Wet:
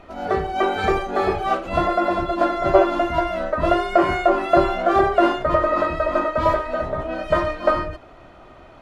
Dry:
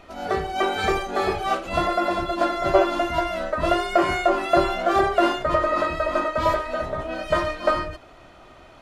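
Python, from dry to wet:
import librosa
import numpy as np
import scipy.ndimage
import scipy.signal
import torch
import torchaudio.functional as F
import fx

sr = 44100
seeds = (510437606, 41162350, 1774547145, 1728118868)

y = fx.high_shelf(x, sr, hz=2900.0, db=-11.0)
y = F.gain(torch.from_numpy(y), 3.5).numpy()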